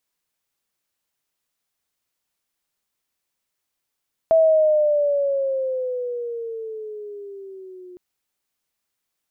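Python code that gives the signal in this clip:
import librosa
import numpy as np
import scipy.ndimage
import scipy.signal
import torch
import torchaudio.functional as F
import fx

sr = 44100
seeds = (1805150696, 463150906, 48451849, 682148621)

y = fx.riser_tone(sr, length_s=3.66, level_db=-11.0, wave='sine', hz=655.0, rise_st=-10.5, swell_db=-27.0)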